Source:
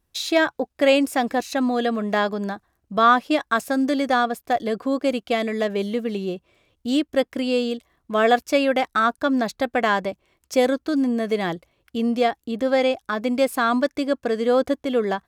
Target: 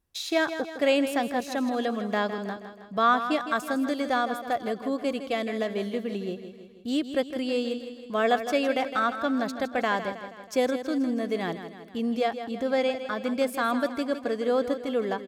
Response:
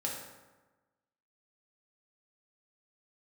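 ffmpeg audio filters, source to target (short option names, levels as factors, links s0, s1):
-af "aecho=1:1:160|320|480|640|800|960:0.299|0.161|0.0871|0.047|0.0254|0.0137,volume=0.501"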